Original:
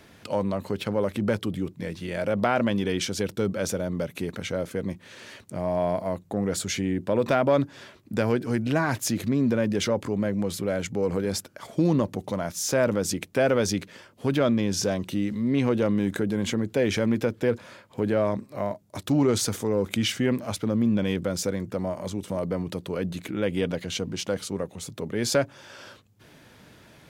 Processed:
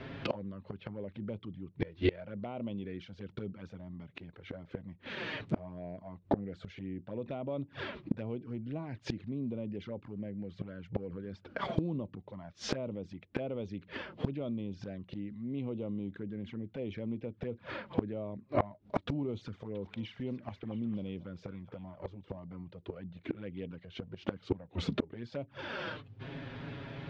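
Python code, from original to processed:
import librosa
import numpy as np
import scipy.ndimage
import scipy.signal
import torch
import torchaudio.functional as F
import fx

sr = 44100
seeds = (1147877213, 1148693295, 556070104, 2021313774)

y = scipy.signal.sosfilt(scipy.signal.butter(4, 3600.0, 'lowpass', fs=sr, output='sos'), x)
y = fx.low_shelf(y, sr, hz=430.0, db=5.5)
y = fx.env_flanger(y, sr, rest_ms=8.2, full_db=-16.5)
y = fx.gate_flip(y, sr, shuts_db=-25.0, range_db=-26)
y = fx.echo_stepped(y, sr, ms=225, hz=1000.0, octaves=0.7, feedback_pct=70, wet_db=-7.5, at=(19.74, 21.95), fade=0.02)
y = y * 10.0 ** (8.5 / 20.0)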